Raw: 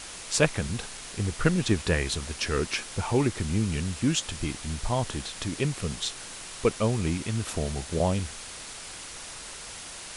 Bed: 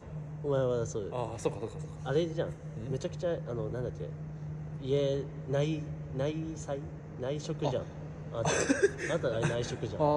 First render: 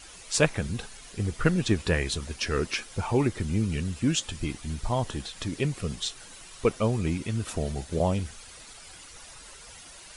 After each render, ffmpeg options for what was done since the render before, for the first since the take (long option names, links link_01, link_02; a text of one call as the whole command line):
ffmpeg -i in.wav -af "afftdn=noise_reduction=10:noise_floor=-41" out.wav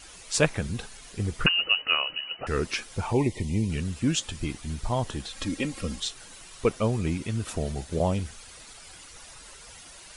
ffmpeg -i in.wav -filter_complex "[0:a]asettb=1/sr,asplit=3[link_01][link_02][link_03];[link_01]atrim=end=1.464[link_04];[link_02]atrim=start=1.46:end=2.47,asetpts=PTS-STARTPTS,afade=type=in:duration=0.004:curve=qsin,afade=type=out:start_time=1.006:duration=0.004:curve=qsin,lowpass=frequency=2600:width_type=q:width=0.5098,lowpass=frequency=2600:width_type=q:width=0.6013,lowpass=frequency=2600:width_type=q:width=0.9,lowpass=frequency=2600:width_type=q:width=2.563,afreqshift=-3000[link_05];[link_03]atrim=start=2.466[link_06];[link_04][link_05]acrossfade=duration=0.004:curve1=hsin:curve2=qsin[link_07];[link_07][link_06]acrossfade=duration=0.004:curve1=qsin:curve2=hsin,asettb=1/sr,asplit=3[link_08][link_09][link_10];[link_08]atrim=end=3.134[link_11];[link_09]atrim=start=3.13:end=3.7,asetpts=PTS-STARTPTS,afade=type=in:duration=0.004:curve=qsin,afade=type=out:start_time=0.566:duration=0.004:curve=qsin,asuperstop=centerf=1400:order=20:qfactor=1.9[link_12];[link_10]atrim=start=3.696[link_13];[link_11][link_12]acrossfade=duration=0.004:curve1=hsin:curve2=qsin[link_14];[link_14][link_13]acrossfade=duration=0.004:curve1=qsin:curve2=hsin,asettb=1/sr,asplit=3[link_15][link_16][link_17];[link_15]atrim=end=5.304[link_18];[link_16]atrim=start=5.3:end=6,asetpts=PTS-STARTPTS,afade=type=in:duration=0.004:curve=qsin,afade=type=out:start_time=0.696:duration=0.004:curve=qsin,aecho=1:1:3.7:0.75,atrim=end_sample=30870[link_19];[link_17]atrim=start=5.996[link_20];[link_18][link_19]acrossfade=duration=0.004:curve1=hsin:curve2=qsin[link_21];[link_21][link_20]acrossfade=duration=0.004:curve1=qsin:curve2=hsin" out.wav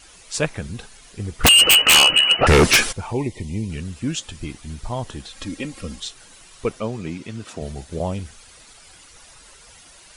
ffmpeg -i in.wav -filter_complex "[0:a]asplit=3[link_01][link_02][link_03];[link_01]afade=type=out:start_time=1.43:duration=0.02[link_04];[link_02]aeval=exprs='0.398*sin(PI/2*7.08*val(0)/0.398)':channel_layout=same,afade=type=in:start_time=1.43:duration=0.02,afade=type=out:start_time=2.91:duration=0.02[link_05];[link_03]afade=type=in:start_time=2.91:duration=0.02[link_06];[link_04][link_05][link_06]amix=inputs=3:normalize=0,asettb=1/sr,asplit=3[link_07][link_08][link_09];[link_07]atrim=end=6.804[link_10];[link_08]atrim=start=6.8:end=7.62,asetpts=PTS-STARTPTS,afade=type=in:duration=0.004:curve=qsin,afade=type=out:start_time=0.816:duration=0.004:curve=qsin,highpass=140,lowpass=7400[link_11];[link_09]atrim=start=7.616[link_12];[link_10][link_11]acrossfade=duration=0.004:curve1=hsin:curve2=qsin[link_13];[link_13][link_12]acrossfade=duration=0.004:curve1=qsin:curve2=hsin" out.wav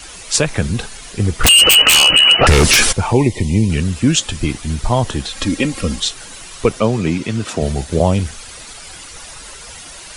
ffmpeg -i in.wav -filter_complex "[0:a]acrossover=split=130|3000[link_01][link_02][link_03];[link_02]acompressor=threshold=-23dB:ratio=2[link_04];[link_01][link_04][link_03]amix=inputs=3:normalize=0,alimiter=level_in=12.5dB:limit=-1dB:release=50:level=0:latency=1" out.wav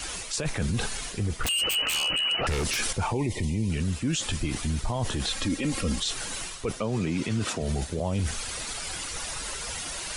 ffmpeg -i in.wav -af "areverse,acompressor=threshold=-19dB:ratio=6,areverse,alimiter=limit=-19.5dB:level=0:latency=1:release=21" out.wav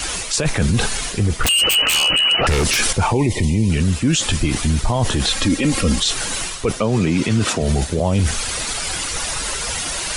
ffmpeg -i in.wav -af "volume=10.5dB" out.wav